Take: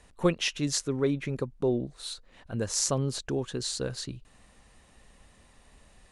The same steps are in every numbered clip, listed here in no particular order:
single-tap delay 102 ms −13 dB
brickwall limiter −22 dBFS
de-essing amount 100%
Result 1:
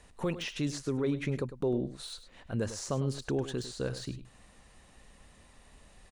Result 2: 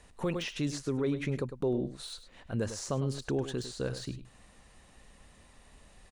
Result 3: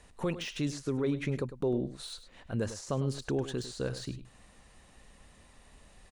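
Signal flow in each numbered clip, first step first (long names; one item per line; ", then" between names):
de-essing, then brickwall limiter, then single-tap delay
de-essing, then single-tap delay, then brickwall limiter
brickwall limiter, then de-essing, then single-tap delay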